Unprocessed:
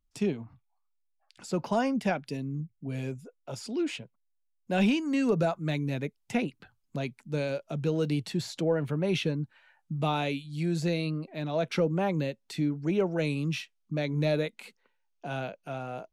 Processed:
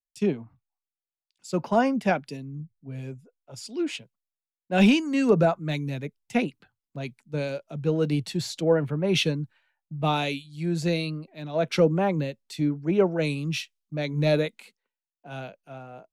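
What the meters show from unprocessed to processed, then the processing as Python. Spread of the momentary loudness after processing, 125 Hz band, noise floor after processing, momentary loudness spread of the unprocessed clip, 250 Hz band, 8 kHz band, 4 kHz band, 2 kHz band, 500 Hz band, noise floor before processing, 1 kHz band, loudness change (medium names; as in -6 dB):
17 LU, +2.5 dB, under -85 dBFS, 11 LU, +3.5 dB, +5.0 dB, +5.5 dB, +4.5 dB, +4.5 dB, -75 dBFS, +4.5 dB, +5.0 dB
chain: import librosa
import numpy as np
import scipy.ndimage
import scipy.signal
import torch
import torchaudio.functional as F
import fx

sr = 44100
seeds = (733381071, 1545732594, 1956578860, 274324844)

y = fx.band_widen(x, sr, depth_pct=100)
y = y * 10.0 ** (3.0 / 20.0)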